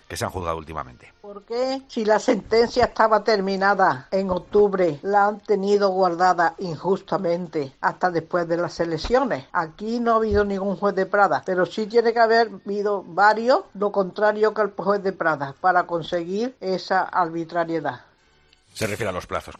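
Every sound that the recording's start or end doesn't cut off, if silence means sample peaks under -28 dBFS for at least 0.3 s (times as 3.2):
1.37–17.95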